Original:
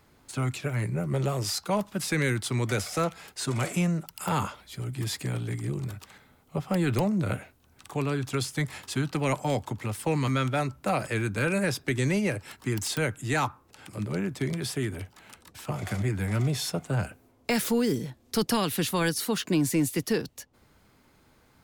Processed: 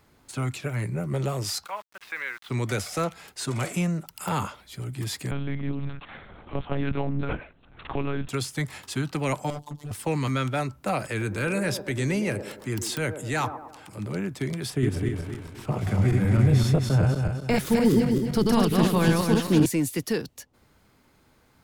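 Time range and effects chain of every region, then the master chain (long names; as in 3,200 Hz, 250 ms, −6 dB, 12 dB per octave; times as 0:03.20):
0:01.66–0:02.50: flat-topped band-pass 1,700 Hz, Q 0.75 + high-frequency loss of the air 160 metres + centre clipping without the shift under −47.5 dBFS
0:05.31–0:08.29: one-pitch LPC vocoder at 8 kHz 140 Hz + multiband upward and downward compressor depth 70%
0:09.50–0:09.91: flat-topped bell 1,800 Hz −13.5 dB 1.3 octaves + phases set to zero 147 Hz + gain into a clipping stage and back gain 30 dB
0:11.09–0:14.16: transient designer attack −3 dB, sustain +3 dB + delay with a band-pass on its return 110 ms, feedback 48%, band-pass 500 Hz, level −7 dB
0:14.70–0:19.66: feedback delay that plays each chunk backwards 129 ms, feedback 62%, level −1.5 dB + spectral tilt −2 dB per octave
whole clip: no processing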